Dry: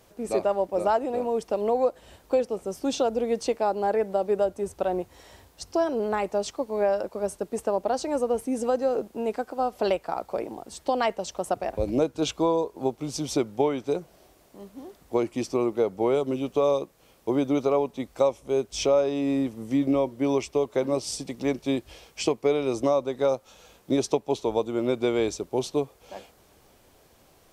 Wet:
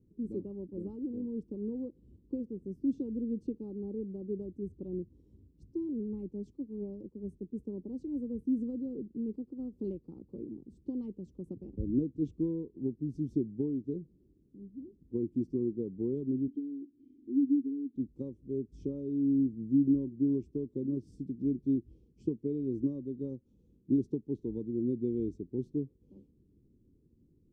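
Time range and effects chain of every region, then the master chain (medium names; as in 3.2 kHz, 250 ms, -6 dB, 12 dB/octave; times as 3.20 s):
5.70–8.47 s: Butterworth band-stop 1.5 kHz, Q 2.7 + three bands expanded up and down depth 40%
16.48–17.96 s: upward compressor, threshold -27 dBFS + vowel filter i + comb 2.9 ms, depth 76%
whole clip: inverse Chebyshev low-pass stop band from 620 Hz, stop band 40 dB; bass shelf 72 Hz -7 dB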